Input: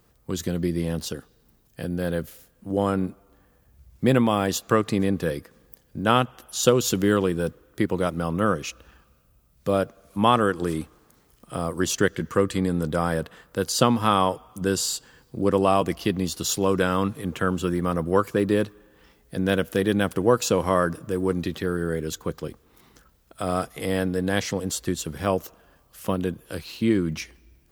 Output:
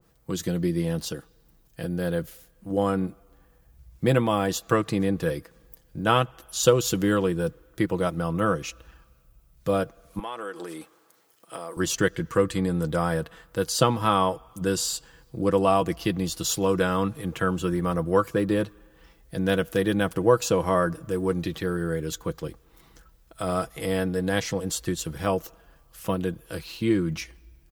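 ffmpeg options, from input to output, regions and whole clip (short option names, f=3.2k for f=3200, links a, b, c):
-filter_complex "[0:a]asettb=1/sr,asplit=3[a][b][c];[a]atrim=end=10.194[d];[b]atrim=start=10.19:end=11.77,asetpts=PTS-STARTPTS,afade=t=in:d=0.004:c=qsin,afade=t=out:st=1.576:d=0.004:c=qsin,acompressor=threshold=-25dB:ratio=16:attack=3.2:release=140:knee=1:detection=peak,highpass=360[e];[c]atrim=start=11.766[f];[d][e]acrossfade=d=0.004:c1=hsin:c2=qsin[g];[g][f]acrossfade=d=0.004:c1=qsin:c2=hsin,asubboost=boost=2.5:cutoff=96,aecho=1:1:6.1:0.45,adynamicequalizer=threshold=0.0251:dfrequency=1600:dqfactor=0.7:tfrequency=1600:tqfactor=0.7:attack=5:release=100:ratio=0.375:range=1.5:mode=cutabove:tftype=highshelf,volume=-1.5dB"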